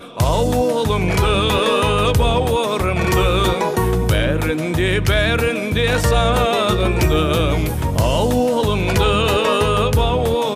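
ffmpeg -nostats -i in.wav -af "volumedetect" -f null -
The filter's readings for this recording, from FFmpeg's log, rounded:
mean_volume: -16.4 dB
max_volume: -6.3 dB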